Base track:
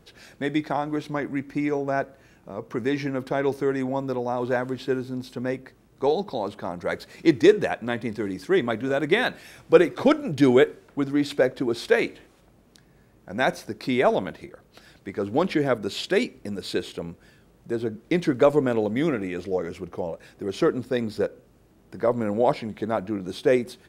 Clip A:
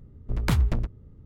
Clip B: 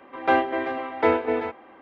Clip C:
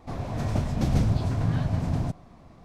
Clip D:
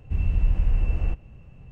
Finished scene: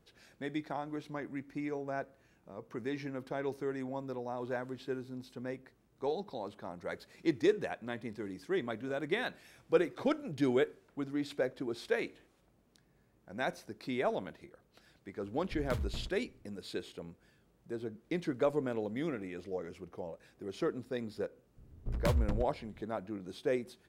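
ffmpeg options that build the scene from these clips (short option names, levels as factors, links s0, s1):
-filter_complex "[1:a]asplit=2[s0][s1];[0:a]volume=0.237[s2];[s0]aecho=1:1:74:0.158,atrim=end=1.25,asetpts=PTS-STARTPTS,volume=0.168,afade=t=in:d=0.004:c=hsin,afade=t=out:st=1.246:d=0.004:c=hsin,adelay=15220[s3];[s1]atrim=end=1.25,asetpts=PTS-STARTPTS,volume=0.376,afade=t=in:d=0.004:c=hsin,afade=t=out:st=1.246:d=0.004:c=hsin,adelay=21570[s4];[s2][s3][s4]amix=inputs=3:normalize=0"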